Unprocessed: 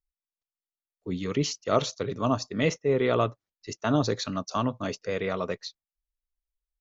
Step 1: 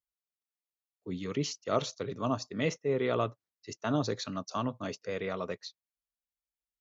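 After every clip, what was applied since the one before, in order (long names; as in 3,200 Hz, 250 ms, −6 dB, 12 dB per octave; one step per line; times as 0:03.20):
high-pass filter 78 Hz
level −5.5 dB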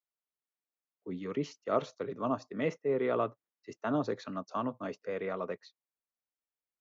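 three-way crossover with the lows and the highs turned down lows −13 dB, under 170 Hz, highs −15 dB, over 2,300 Hz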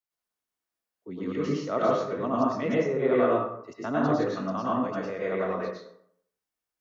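dense smooth reverb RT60 0.69 s, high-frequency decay 0.55×, pre-delay 90 ms, DRR −6.5 dB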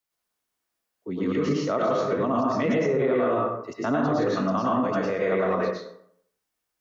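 brickwall limiter −22.5 dBFS, peak gain reduction 11 dB
level +7 dB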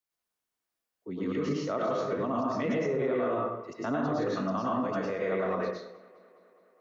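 tape delay 207 ms, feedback 75%, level −21 dB, low-pass 5,500 Hz
level −6 dB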